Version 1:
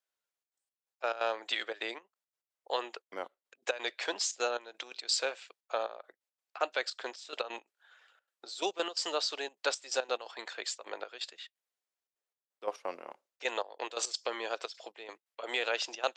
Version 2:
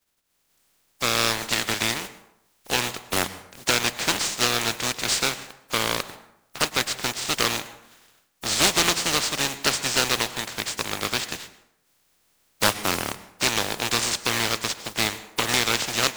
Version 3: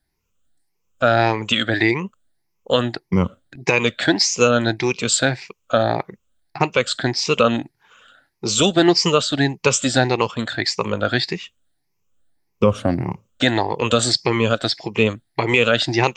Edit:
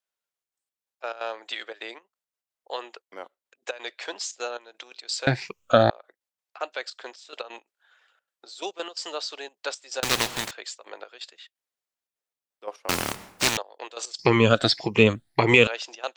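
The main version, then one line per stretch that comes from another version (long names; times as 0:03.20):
1
0:05.27–0:05.90: punch in from 3
0:10.03–0:10.51: punch in from 2
0:12.89–0:13.57: punch in from 2
0:14.19–0:15.67: punch in from 3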